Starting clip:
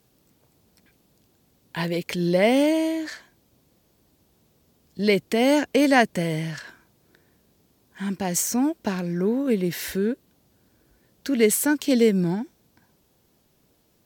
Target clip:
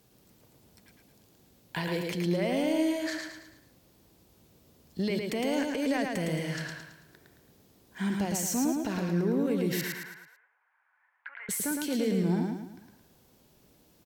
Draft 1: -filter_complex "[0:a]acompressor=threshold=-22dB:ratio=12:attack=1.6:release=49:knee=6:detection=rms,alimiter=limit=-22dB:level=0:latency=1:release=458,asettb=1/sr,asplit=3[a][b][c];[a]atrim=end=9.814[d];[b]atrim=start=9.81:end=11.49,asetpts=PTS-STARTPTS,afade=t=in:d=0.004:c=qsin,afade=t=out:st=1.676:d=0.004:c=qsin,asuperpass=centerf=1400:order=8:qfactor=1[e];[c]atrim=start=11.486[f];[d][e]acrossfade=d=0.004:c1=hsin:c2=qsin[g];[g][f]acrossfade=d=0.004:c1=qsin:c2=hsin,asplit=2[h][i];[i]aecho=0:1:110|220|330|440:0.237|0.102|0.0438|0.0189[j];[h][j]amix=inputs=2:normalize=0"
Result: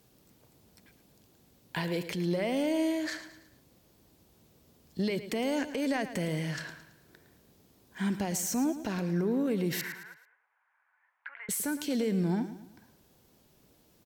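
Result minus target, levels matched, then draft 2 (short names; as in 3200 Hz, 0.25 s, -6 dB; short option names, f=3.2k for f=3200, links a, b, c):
echo-to-direct -9 dB
-filter_complex "[0:a]acompressor=threshold=-22dB:ratio=12:attack=1.6:release=49:knee=6:detection=rms,alimiter=limit=-22dB:level=0:latency=1:release=458,asettb=1/sr,asplit=3[a][b][c];[a]atrim=end=9.814[d];[b]atrim=start=9.81:end=11.49,asetpts=PTS-STARTPTS,afade=t=in:d=0.004:c=qsin,afade=t=out:st=1.676:d=0.004:c=qsin,asuperpass=centerf=1400:order=8:qfactor=1[e];[c]atrim=start=11.486[f];[d][e]acrossfade=d=0.004:c1=hsin:c2=qsin[g];[g][f]acrossfade=d=0.004:c1=qsin:c2=hsin,asplit=2[h][i];[i]aecho=0:1:110|220|330|440|550:0.668|0.287|0.124|0.0531|0.0228[j];[h][j]amix=inputs=2:normalize=0"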